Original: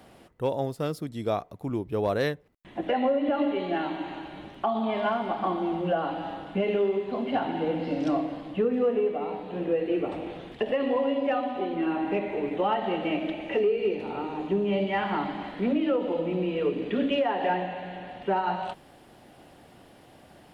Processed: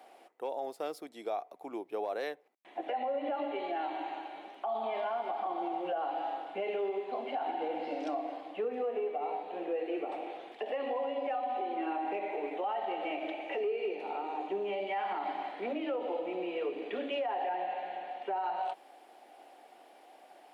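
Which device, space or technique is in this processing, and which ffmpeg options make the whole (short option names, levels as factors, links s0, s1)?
laptop speaker: -af "highpass=f=330:w=0.5412,highpass=f=330:w=1.3066,equalizer=f=760:t=o:w=0.43:g=10,equalizer=f=2300:t=o:w=0.26:g=5,alimiter=limit=0.1:level=0:latency=1:release=84,volume=0.473"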